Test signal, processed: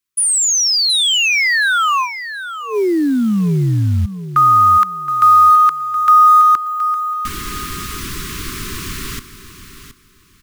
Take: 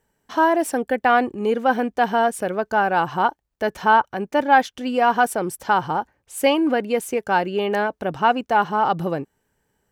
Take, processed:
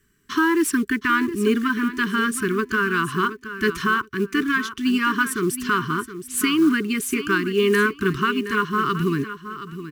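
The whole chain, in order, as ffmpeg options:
-af "alimiter=limit=0.237:level=0:latency=1:release=450,asuperstop=centerf=660:order=20:qfactor=1.1,aecho=1:1:721|1442|2163:0.251|0.0553|0.0122,acrusher=bits=7:mode=log:mix=0:aa=0.000001,volume=2.24"

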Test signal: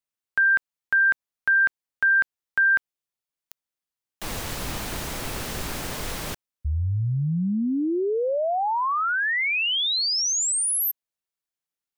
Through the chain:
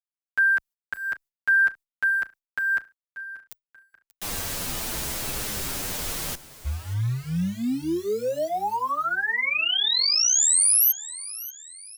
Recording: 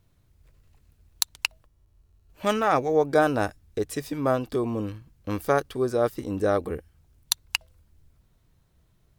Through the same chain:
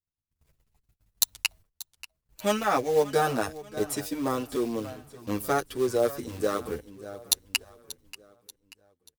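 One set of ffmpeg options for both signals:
-filter_complex "[0:a]agate=range=0.0224:threshold=0.00251:ratio=3:release=77:detection=rms,highshelf=f=4200:g=9.5,acrossover=split=1000[s0][s1];[s0]acrusher=bits=4:mode=log:mix=0:aa=0.000001[s2];[s2][s1]amix=inputs=2:normalize=0,asoftclip=type=tanh:threshold=0.944,asplit=2[s3][s4];[s4]aecho=0:1:585|1170|1755|2340:0.141|0.0593|0.0249|0.0105[s5];[s3][s5]amix=inputs=2:normalize=0,asplit=2[s6][s7];[s7]adelay=8.3,afreqshift=-0.67[s8];[s6][s8]amix=inputs=2:normalize=1"

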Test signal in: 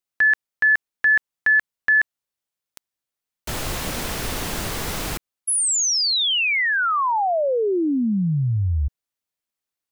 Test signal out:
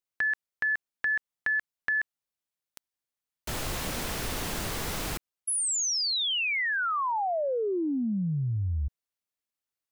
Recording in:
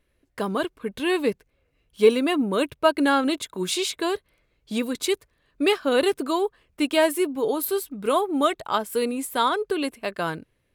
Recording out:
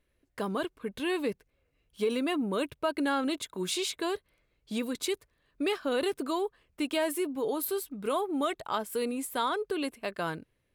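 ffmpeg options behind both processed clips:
-af "acompressor=threshold=0.0708:ratio=4:attack=19:release=24:knee=6:detection=rms,volume=0.562"

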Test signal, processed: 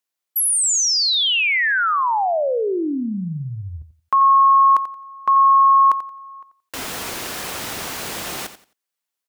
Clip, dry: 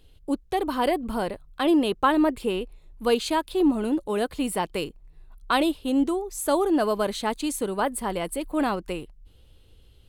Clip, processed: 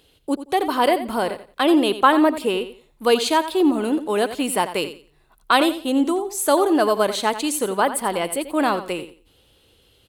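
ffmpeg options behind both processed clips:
-filter_complex "[0:a]highpass=f=360:p=1,asplit=2[s0][s1];[s1]aecho=0:1:88|176|264:0.237|0.0545|0.0125[s2];[s0][s2]amix=inputs=2:normalize=0,volume=2.24"

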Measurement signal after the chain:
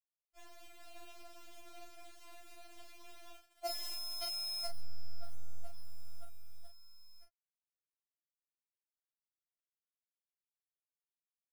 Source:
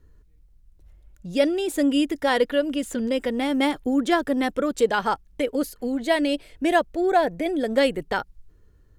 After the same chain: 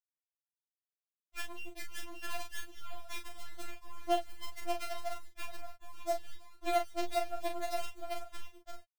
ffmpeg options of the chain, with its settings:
-filter_complex "[0:a]highpass=f=61:w=0.5412,highpass=f=61:w=1.3066,apsyclip=3.55,asplit=3[s0][s1][s2];[s0]bandpass=f=730:t=q:w=8,volume=1[s3];[s1]bandpass=f=1090:t=q:w=8,volume=0.501[s4];[s2]bandpass=f=2440:t=q:w=8,volume=0.355[s5];[s3][s4][s5]amix=inputs=3:normalize=0,equalizer=f=1200:w=1.4:g=-12,agate=range=0.0224:threshold=0.00708:ratio=3:detection=peak,adynamicequalizer=threshold=0.00447:dfrequency=3200:dqfactor=1.6:tfrequency=3200:tqfactor=1.6:attack=5:release=100:ratio=0.375:range=2:mode=boostabove:tftype=bell,aeval=exprs='sgn(val(0))*max(abs(val(0))-0.01,0)':c=same,aecho=1:1:574:0.376,acrossover=split=110|230|2300[s6][s7][s8][s9];[s6]acompressor=threshold=0.00126:ratio=4[s10];[s7]acompressor=threshold=0.00112:ratio=4[s11];[s8]acompressor=threshold=0.0398:ratio=4[s12];[s9]acompressor=threshold=0.00708:ratio=4[s13];[s10][s11][s12][s13]amix=inputs=4:normalize=0,acrusher=bits=5:dc=4:mix=0:aa=0.000001,asplit=2[s14][s15];[s15]adelay=37,volume=0.501[s16];[s14][s16]amix=inputs=2:normalize=0,afftfilt=real='re*4*eq(mod(b,16),0)':imag='im*4*eq(mod(b,16),0)':win_size=2048:overlap=0.75,volume=0.447"

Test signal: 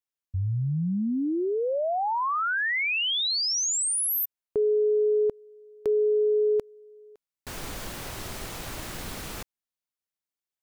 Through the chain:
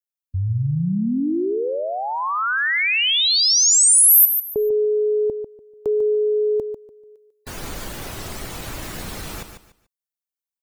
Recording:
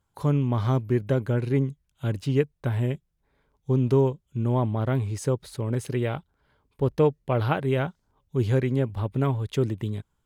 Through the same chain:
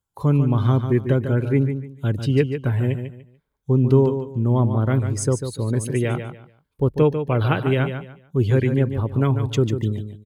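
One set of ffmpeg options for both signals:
-filter_complex "[0:a]afftdn=nr=15:nf=-43,acrossover=split=580|930[s0][s1][s2];[s1]acompressor=threshold=0.00398:ratio=6:release=750[s3];[s0][s3][s2]amix=inputs=3:normalize=0,crystalizer=i=1.5:c=0,aecho=1:1:146|292|438:0.376|0.094|0.0235,volume=1.78"

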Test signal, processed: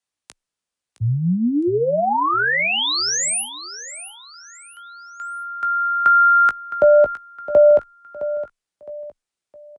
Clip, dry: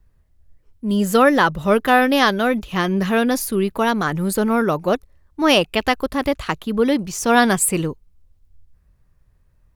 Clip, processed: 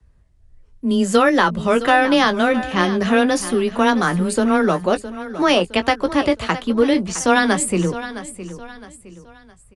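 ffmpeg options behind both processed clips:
-filter_complex "[0:a]afreqshift=13,acrossover=split=85|1700[s0][s1][s2];[s0]acompressor=threshold=0.00708:ratio=4[s3];[s1]acompressor=threshold=0.178:ratio=4[s4];[s2]acompressor=threshold=0.0708:ratio=4[s5];[s3][s4][s5]amix=inputs=3:normalize=0,asplit=2[s6][s7];[s7]adelay=17,volume=0.335[s8];[s6][s8]amix=inputs=2:normalize=0,aecho=1:1:663|1326|1989:0.211|0.0761|0.0274,aresample=22050,aresample=44100,volume=1.33"

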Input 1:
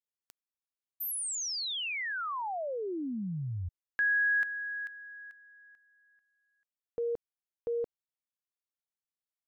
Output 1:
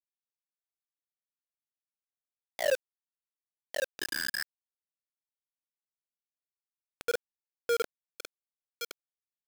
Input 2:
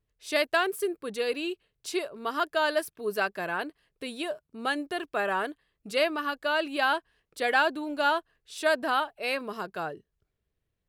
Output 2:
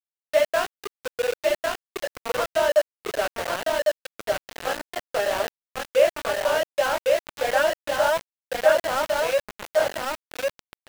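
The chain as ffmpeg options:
-filter_complex "[0:a]highpass=f=550:t=q:w=4.9,aresample=8000,aresample=44100,flanger=delay=17:depth=7.4:speed=2.2,asplit=2[s0][s1];[s1]aecho=0:1:1102|2204|3306:0.708|0.127|0.0229[s2];[s0][s2]amix=inputs=2:normalize=0,aeval=exprs='val(0)*gte(abs(val(0)),0.0596)':c=same"

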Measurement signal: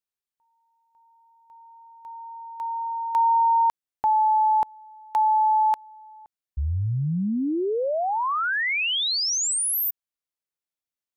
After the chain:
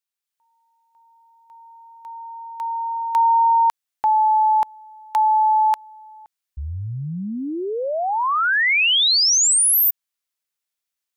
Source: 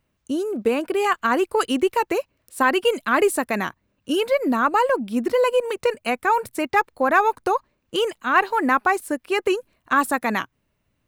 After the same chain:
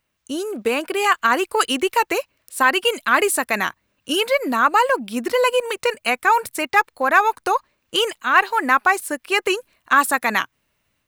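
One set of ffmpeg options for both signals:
-af "dynaudnorm=f=180:g=3:m=1.78,tiltshelf=f=740:g=-6,volume=0.75"

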